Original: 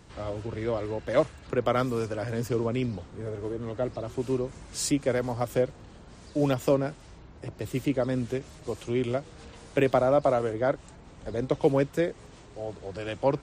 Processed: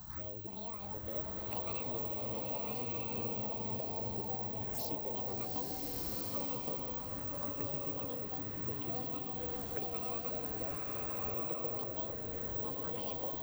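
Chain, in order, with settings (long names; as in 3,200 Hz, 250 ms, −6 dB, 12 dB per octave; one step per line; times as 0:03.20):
pitch shifter gated in a rhythm +11.5 semitones, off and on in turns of 468 ms
bad sample-rate conversion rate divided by 2×, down none, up zero stuff
phaser swept by the level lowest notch 360 Hz, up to 1,600 Hz, full sweep at −27.5 dBFS
downward compressor 6 to 1, threshold −43 dBFS, peak gain reduction 27 dB
steady tone 4,100 Hz −77 dBFS
slow-attack reverb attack 1,330 ms, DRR −4 dB
level +2 dB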